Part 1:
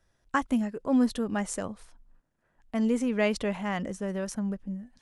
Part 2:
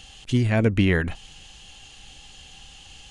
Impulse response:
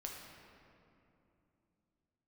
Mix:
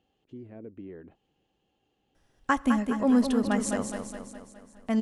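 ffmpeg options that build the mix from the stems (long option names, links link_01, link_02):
-filter_complex "[0:a]adelay=2150,volume=1dB,asplit=3[link_01][link_02][link_03];[link_02]volume=-14dB[link_04];[link_03]volume=-5.5dB[link_05];[1:a]alimiter=limit=-17dB:level=0:latency=1:release=158,bandpass=frequency=360:width_type=q:width=1.8:csg=0,volume=-11dB[link_06];[2:a]atrim=start_sample=2205[link_07];[link_04][link_07]afir=irnorm=-1:irlink=0[link_08];[link_05]aecho=0:1:208|416|624|832|1040|1248|1456|1664:1|0.54|0.292|0.157|0.085|0.0459|0.0248|0.0134[link_09];[link_01][link_06][link_08][link_09]amix=inputs=4:normalize=0"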